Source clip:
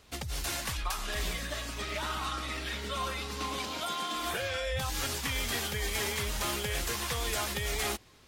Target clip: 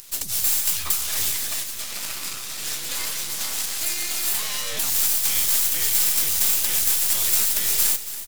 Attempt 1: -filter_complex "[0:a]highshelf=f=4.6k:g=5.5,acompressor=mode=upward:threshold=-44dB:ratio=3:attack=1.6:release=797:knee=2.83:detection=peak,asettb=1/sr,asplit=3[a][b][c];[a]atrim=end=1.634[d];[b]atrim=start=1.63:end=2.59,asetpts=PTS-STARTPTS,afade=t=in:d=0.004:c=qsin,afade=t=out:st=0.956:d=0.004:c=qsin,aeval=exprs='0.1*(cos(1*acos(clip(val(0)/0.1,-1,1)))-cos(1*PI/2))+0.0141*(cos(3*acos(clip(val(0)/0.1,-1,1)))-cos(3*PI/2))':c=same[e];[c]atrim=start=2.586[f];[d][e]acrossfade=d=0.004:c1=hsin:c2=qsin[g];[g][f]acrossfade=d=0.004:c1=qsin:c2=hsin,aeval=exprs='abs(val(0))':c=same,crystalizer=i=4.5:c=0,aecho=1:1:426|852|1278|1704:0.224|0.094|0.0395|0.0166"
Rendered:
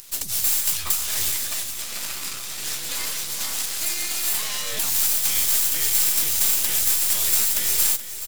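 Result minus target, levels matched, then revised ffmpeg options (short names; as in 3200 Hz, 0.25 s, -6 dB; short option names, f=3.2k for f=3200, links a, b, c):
echo 0.147 s late
-filter_complex "[0:a]highshelf=f=4.6k:g=5.5,acompressor=mode=upward:threshold=-44dB:ratio=3:attack=1.6:release=797:knee=2.83:detection=peak,asettb=1/sr,asplit=3[a][b][c];[a]atrim=end=1.634[d];[b]atrim=start=1.63:end=2.59,asetpts=PTS-STARTPTS,afade=t=in:d=0.004:c=qsin,afade=t=out:st=0.956:d=0.004:c=qsin,aeval=exprs='0.1*(cos(1*acos(clip(val(0)/0.1,-1,1)))-cos(1*PI/2))+0.0141*(cos(3*acos(clip(val(0)/0.1,-1,1)))-cos(3*PI/2))':c=same[e];[c]atrim=start=2.586[f];[d][e]acrossfade=d=0.004:c1=hsin:c2=qsin[g];[g][f]acrossfade=d=0.004:c1=qsin:c2=hsin,aeval=exprs='abs(val(0))':c=same,crystalizer=i=4.5:c=0,aecho=1:1:279|558|837|1116:0.224|0.094|0.0395|0.0166"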